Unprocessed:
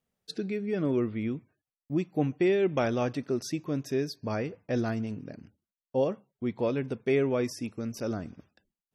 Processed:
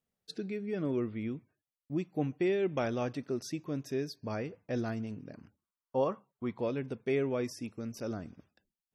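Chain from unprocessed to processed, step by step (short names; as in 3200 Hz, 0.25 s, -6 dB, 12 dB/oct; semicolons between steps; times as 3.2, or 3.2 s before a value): 5.34–6.58 bell 1100 Hz +13 dB 0.77 oct; gain -5 dB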